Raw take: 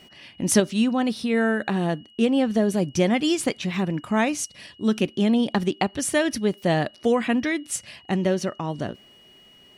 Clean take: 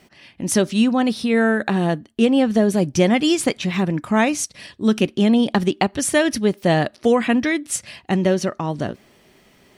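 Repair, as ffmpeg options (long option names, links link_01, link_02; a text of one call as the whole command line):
ffmpeg -i in.wav -af "bandreject=frequency=2900:width=30,asetnsamples=nb_out_samples=441:pad=0,asendcmd='0.6 volume volume 4.5dB',volume=0dB" out.wav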